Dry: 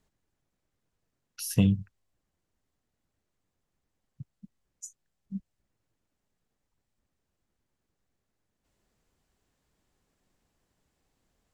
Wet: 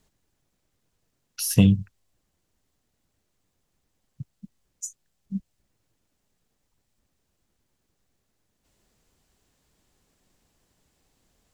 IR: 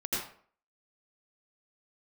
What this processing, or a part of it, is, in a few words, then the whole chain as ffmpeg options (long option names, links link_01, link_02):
exciter from parts: -filter_complex "[0:a]asplit=2[link_01][link_02];[link_02]highpass=2300,asoftclip=type=tanh:threshold=-37dB,volume=-5.5dB[link_03];[link_01][link_03]amix=inputs=2:normalize=0,volume=6dB"